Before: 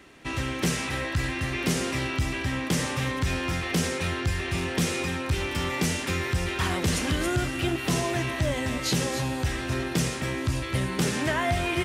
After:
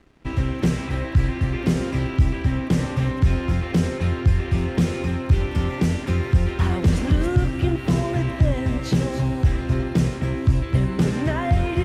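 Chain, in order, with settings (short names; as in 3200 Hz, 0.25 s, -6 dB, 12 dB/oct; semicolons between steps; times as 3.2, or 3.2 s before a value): crossover distortion -52.5 dBFS; tilt -3 dB/oct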